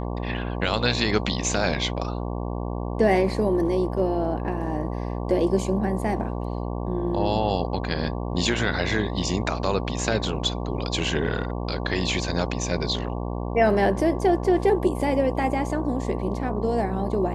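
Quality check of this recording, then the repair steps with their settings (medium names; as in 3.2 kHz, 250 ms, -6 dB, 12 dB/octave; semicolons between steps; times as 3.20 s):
buzz 60 Hz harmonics 19 -29 dBFS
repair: de-hum 60 Hz, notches 19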